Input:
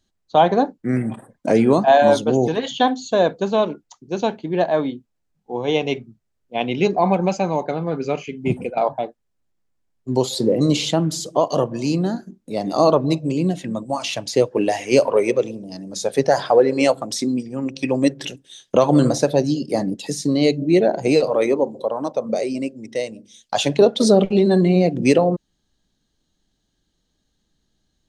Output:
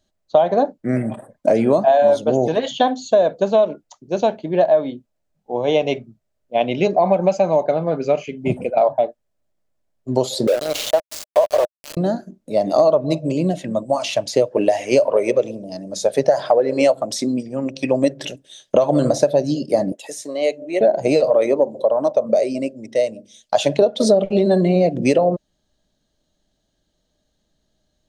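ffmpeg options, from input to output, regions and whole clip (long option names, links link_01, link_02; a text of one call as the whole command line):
ffmpeg -i in.wav -filter_complex "[0:a]asettb=1/sr,asplit=3[link_01][link_02][link_03];[link_01]atrim=end=10.474[link_04];[link_02]atrim=start=10.47:end=11.97,asetpts=PTS-STARTPTS,afade=type=in:duration=0.004:curve=qsin,afade=type=out:start_time=1.496:duration=0.004:curve=qsin,highpass=frequency=450:width=0.5412,highpass=frequency=450:width=1.3066,aeval=exprs='val(0)*gte(abs(val(0)),0.0708)':channel_layout=same[link_05];[link_03]atrim=start=11.966[link_06];[link_04][link_05]acrossfade=duration=0.004:curve1=hsin:curve2=qsin[link_07];[link_07][link_06]acrossfade=duration=0.004:curve1=qsin:curve2=hsin,asettb=1/sr,asplit=3[link_08][link_09][link_10];[link_08]atrim=end=19.924[link_11];[link_09]atrim=start=19.92:end=20.81,asetpts=PTS-STARTPTS,afade=type=in:duration=0.004:curve=qsin,afade=type=out:start_time=0.886:duration=0.004:curve=qsin,highpass=650,equalizer=frequency=4500:width=2.1:gain=-11[link_12];[link_10]atrim=start=20.806[link_13];[link_11][link_12]acrossfade=duration=0.004:curve1=hsin:curve2=qsin[link_14];[link_14][link_13]acrossfade=duration=0.004:curve1=qsin:curve2=hsin,equalizer=frequency=610:width=3.9:gain=13,acompressor=threshold=-11dB:ratio=6" out.wav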